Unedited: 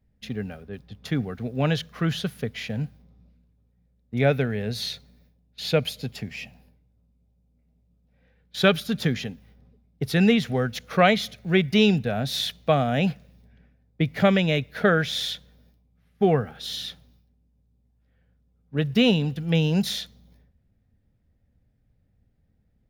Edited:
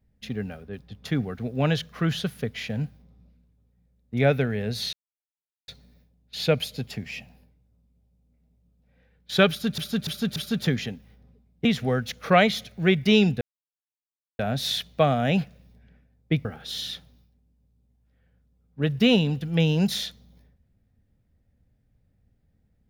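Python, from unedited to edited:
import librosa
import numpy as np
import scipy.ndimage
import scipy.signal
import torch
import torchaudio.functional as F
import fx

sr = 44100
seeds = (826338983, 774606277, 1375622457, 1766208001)

y = fx.edit(x, sr, fx.insert_silence(at_s=4.93, length_s=0.75),
    fx.repeat(start_s=8.74, length_s=0.29, count=4),
    fx.cut(start_s=10.03, length_s=0.29),
    fx.insert_silence(at_s=12.08, length_s=0.98),
    fx.cut(start_s=14.14, length_s=2.26), tone=tone)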